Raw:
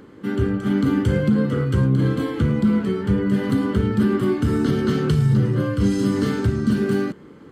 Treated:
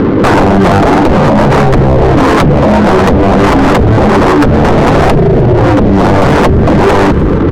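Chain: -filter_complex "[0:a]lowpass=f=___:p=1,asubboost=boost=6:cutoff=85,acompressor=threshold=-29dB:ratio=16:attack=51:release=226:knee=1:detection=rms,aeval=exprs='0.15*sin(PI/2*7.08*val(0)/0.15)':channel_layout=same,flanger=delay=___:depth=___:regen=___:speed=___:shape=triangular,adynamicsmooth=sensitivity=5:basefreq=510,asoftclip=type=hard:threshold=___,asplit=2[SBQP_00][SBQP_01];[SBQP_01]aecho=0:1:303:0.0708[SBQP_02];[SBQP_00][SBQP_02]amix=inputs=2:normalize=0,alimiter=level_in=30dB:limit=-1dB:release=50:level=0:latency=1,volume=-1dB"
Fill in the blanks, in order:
1300, 0.5, 6.7, 76, 0.56, -20dB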